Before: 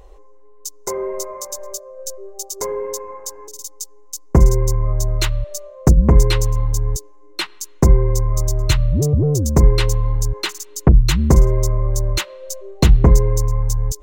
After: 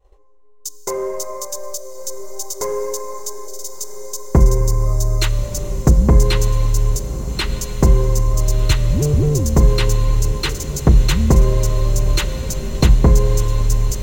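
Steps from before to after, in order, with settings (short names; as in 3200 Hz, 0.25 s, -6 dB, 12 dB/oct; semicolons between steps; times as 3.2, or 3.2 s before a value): expander -34 dBFS; in parallel at -9.5 dB: hard clip -21.5 dBFS, distortion -3 dB; on the sum: diffused feedback echo 1.325 s, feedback 66%, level -12 dB; Schroeder reverb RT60 3.9 s, combs from 28 ms, DRR 14 dB; gain -1 dB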